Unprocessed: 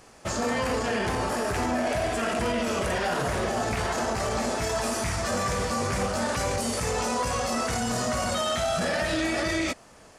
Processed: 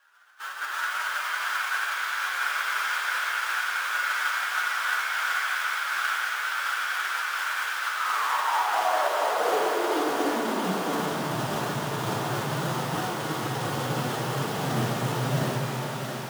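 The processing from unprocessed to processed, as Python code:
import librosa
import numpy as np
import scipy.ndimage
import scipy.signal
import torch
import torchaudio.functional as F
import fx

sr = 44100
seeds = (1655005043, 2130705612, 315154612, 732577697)

p1 = scipy.signal.sosfilt(scipy.signal.butter(2, 2800.0, 'lowpass', fs=sr, output='sos'), x)
p2 = fx.low_shelf(p1, sr, hz=420.0, db=6.5)
p3 = fx.spec_gate(p2, sr, threshold_db=-15, keep='weak')
p4 = fx.sample_hold(p3, sr, seeds[0], rate_hz=2200.0, jitter_pct=20)
p5 = fx.filter_sweep_highpass(p4, sr, from_hz=1500.0, to_hz=130.0, start_s=4.88, end_s=7.04, q=5.6)
p6 = fx.stretch_vocoder(p5, sr, factor=1.6)
p7 = p6 + fx.echo_thinned(p6, sr, ms=672, feedback_pct=72, hz=420.0, wet_db=-5.5, dry=0)
y = fx.rev_shimmer(p7, sr, seeds[1], rt60_s=3.6, semitones=7, shimmer_db=-8, drr_db=-1.0)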